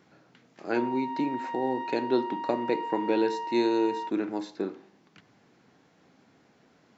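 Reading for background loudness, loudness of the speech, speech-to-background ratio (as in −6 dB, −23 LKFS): −35.5 LKFS, −29.5 LKFS, 6.0 dB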